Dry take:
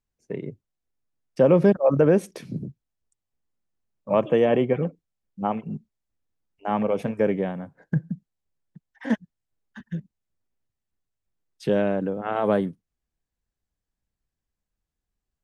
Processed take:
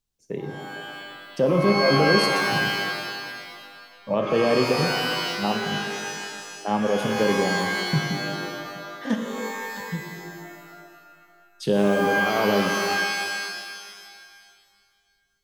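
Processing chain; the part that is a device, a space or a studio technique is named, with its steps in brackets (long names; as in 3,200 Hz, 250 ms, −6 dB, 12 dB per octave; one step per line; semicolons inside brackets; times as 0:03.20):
over-bright horn tweeter (high shelf with overshoot 2,800 Hz +6 dB, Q 1.5; brickwall limiter −12.5 dBFS, peak gain reduction 5.5 dB)
reverb with rising layers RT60 2 s, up +12 semitones, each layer −2 dB, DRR 4 dB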